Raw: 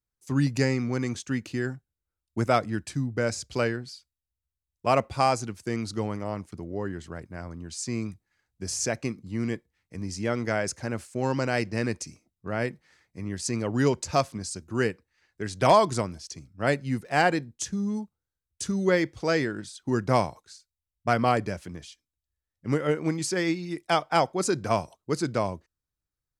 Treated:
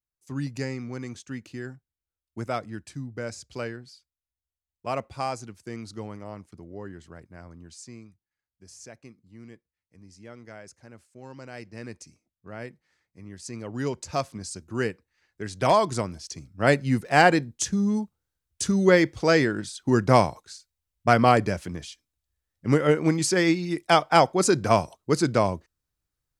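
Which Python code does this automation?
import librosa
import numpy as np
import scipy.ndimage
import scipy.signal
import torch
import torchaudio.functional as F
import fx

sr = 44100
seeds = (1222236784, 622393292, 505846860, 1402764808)

y = fx.gain(x, sr, db=fx.line((7.67, -7.0), (8.09, -17.0), (11.29, -17.0), (11.99, -9.5), (13.35, -9.5), (14.5, -1.5), (15.78, -1.5), (16.74, 5.0)))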